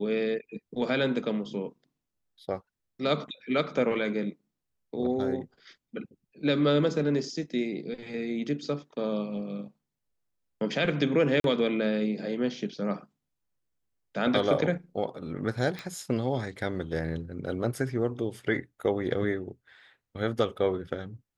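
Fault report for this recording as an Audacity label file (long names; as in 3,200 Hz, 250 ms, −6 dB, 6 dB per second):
11.400000	11.440000	drop-out 42 ms
15.790000	15.790000	click −22 dBFS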